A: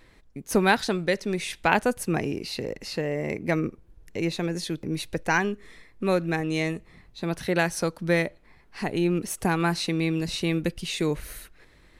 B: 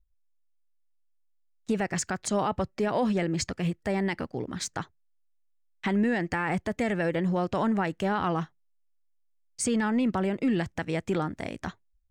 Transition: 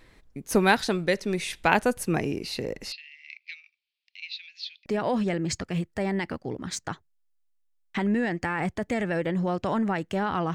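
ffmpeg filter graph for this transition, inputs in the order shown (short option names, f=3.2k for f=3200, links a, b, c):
-filter_complex "[0:a]asettb=1/sr,asplit=3[a][b][c];[a]atrim=end=2.924[d];[b]atrim=start=2.92:end=4.86,asetpts=PTS-STARTPTS,afade=t=in:d=0.004:c=qsin,afade=t=out:st=1.936:d=0.004:c=qsin,asuperpass=centerf=3400:order=8:qfactor=1.3[e];[c]atrim=start=4.856[f];[d][e]acrossfade=d=0.004:c1=hsin:c2=qsin[g];[g][f]acrossfade=d=0.004:c1=qsin:c2=hsin,apad=whole_dur=10.54,atrim=end=10.54,atrim=end=4.862[h];[1:a]atrim=start=2.748:end=8.43[i];[h][i]acrossfade=d=0.004:c1=hsin:c2=hsin"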